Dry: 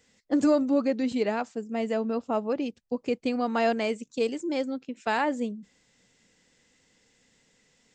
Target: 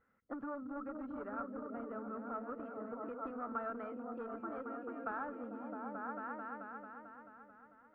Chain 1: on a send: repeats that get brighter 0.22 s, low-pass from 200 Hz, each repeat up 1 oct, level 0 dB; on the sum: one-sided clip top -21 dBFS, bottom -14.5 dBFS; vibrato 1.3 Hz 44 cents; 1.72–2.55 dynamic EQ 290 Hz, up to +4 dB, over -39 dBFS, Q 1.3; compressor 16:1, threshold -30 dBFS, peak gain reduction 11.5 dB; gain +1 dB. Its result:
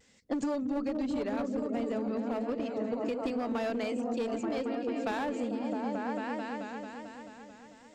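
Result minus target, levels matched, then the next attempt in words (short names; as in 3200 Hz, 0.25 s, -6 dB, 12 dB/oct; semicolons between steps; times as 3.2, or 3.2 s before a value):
1000 Hz band -5.0 dB
on a send: repeats that get brighter 0.22 s, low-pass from 200 Hz, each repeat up 1 oct, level 0 dB; on the sum: one-sided clip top -21 dBFS, bottom -14.5 dBFS; vibrato 1.3 Hz 44 cents; 1.72–2.55 dynamic EQ 290 Hz, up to +4 dB, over -39 dBFS, Q 1.3; compressor 16:1, threshold -30 dBFS, peak gain reduction 11.5 dB; ladder low-pass 1400 Hz, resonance 85%; gain +1 dB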